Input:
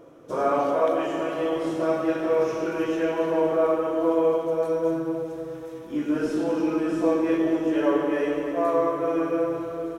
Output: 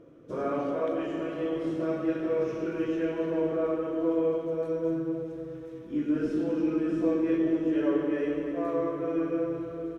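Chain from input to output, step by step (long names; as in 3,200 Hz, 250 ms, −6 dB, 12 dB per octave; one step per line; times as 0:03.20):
low-pass filter 1,500 Hz 6 dB per octave
parametric band 840 Hz −12.5 dB 1.3 octaves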